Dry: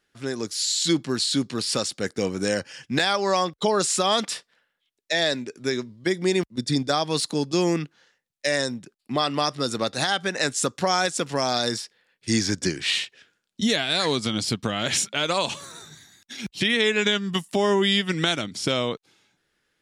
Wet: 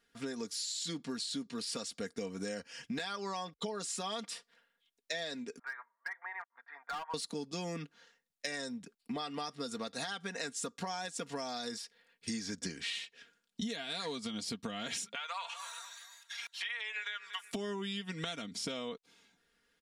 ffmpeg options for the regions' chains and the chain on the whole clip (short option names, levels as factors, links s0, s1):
-filter_complex "[0:a]asettb=1/sr,asplit=3[s0][s1][s2];[s0]atrim=end=5.594[s3];[s1]atrim=start=5.59:end=7.14,asetpts=PTS-STARTPTS,afade=t=in:d=0.004:c=qsin,afade=t=out:st=1.546:d=0.004:c=qsin,asuperpass=centerf=1200:order=8:qfactor=1.1,asoftclip=type=hard:threshold=0.0316[s4];[s2]atrim=start=7.136[s5];[s3][s4]acrossfade=d=0.004:c1=hsin:c2=qsin[s6];[s6][s5]acrossfade=d=0.004:c1=qsin:c2=hsin,asettb=1/sr,asplit=3[s7][s8][s9];[s7]atrim=end=15.154[s10];[s8]atrim=start=15.15:end=17.52,asetpts=PTS-STARTPTS,afade=t=in:d=0.004:c=qsin,afade=t=out:st=2.366:d=0.004:c=qsin,highpass=f=880:w=0.5412,highpass=f=880:w=1.3066,acrossover=split=2900[s11][s12];[s12]acompressor=threshold=0.00794:ratio=4:attack=1:release=60[s13];[s11][s13]amix=inputs=2:normalize=0,aecho=1:1:238|476|714:0.126|0.0478|0.0182,atrim=end_sample=104517[s14];[s9]atrim=start=17.516[s15];[s10][s14]acrossfade=d=0.004:c1=hsin:c2=qsin[s16];[s16][s15]acrossfade=d=0.004:c1=qsin:c2=hsin,aecho=1:1:4.3:0.66,acompressor=threshold=0.0224:ratio=6,volume=0.631"